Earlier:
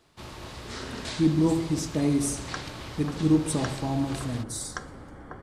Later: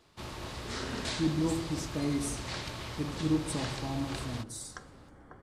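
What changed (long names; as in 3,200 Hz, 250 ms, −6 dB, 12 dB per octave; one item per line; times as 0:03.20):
speech −7.5 dB
second sound −10.0 dB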